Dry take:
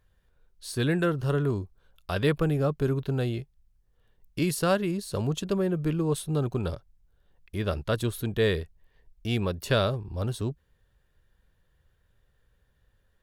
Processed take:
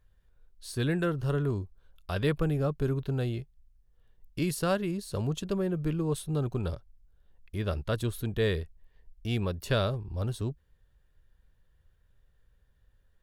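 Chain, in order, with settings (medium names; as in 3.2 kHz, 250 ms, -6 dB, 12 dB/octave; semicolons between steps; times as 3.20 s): bass shelf 72 Hz +9 dB; trim -4 dB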